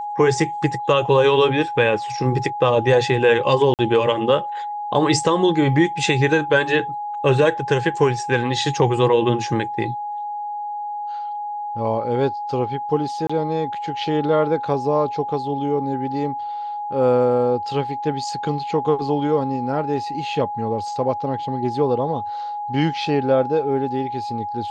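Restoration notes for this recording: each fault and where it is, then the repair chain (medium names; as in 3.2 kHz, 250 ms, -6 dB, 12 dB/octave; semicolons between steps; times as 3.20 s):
whine 830 Hz -25 dBFS
3.74–3.79 s: dropout 48 ms
13.27–13.29 s: dropout 25 ms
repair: band-stop 830 Hz, Q 30; interpolate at 3.74 s, 48 ms; interpolate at 13.27 s, 25 ms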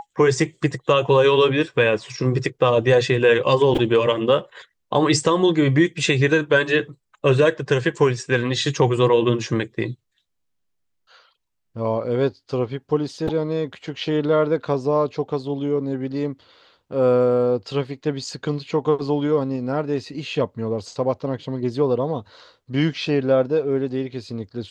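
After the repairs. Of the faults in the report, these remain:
nothing left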